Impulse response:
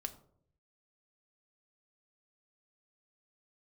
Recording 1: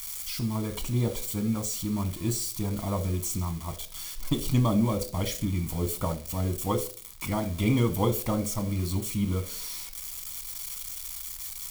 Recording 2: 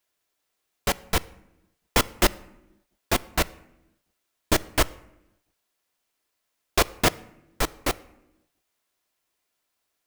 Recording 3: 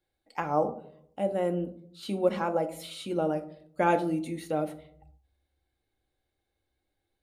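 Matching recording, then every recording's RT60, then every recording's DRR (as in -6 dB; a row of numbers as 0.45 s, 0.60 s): 3; 0.45 s, 0.90 s, 0.65 s; 7.5 dB, 13.0 dB, 6.5 dB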